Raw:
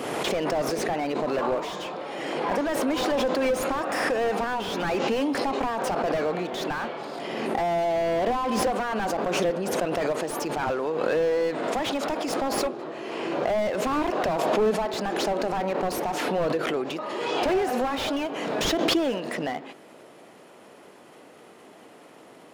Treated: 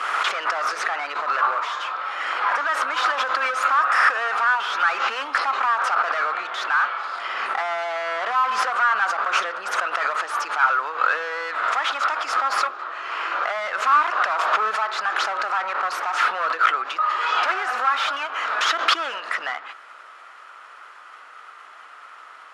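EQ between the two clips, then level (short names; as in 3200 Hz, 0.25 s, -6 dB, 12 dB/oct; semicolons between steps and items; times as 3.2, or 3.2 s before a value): resonant high-pass 1300 Hz, resonance Q 5.5; air absorption 68 m; +4.5 dB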